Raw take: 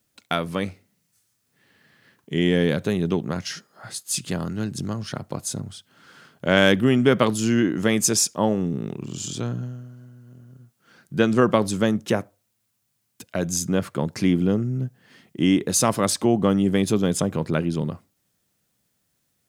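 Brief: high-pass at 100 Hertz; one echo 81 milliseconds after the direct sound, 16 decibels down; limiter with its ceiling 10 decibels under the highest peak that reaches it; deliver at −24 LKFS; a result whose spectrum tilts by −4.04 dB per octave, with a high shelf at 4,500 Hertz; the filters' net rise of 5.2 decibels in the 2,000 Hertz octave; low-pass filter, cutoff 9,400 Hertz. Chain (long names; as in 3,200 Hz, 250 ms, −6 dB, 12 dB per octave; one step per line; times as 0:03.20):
high-pass filter 100 Hz
low-pass filter 9,400 Hz
parametric band 2,000 Hz +6 dB
high-shelf EQ 4,500 Hz +4.5 dB
brickwall limiter −8 dBFS
single-tap delay 81 ms −16 dB
level −1 dB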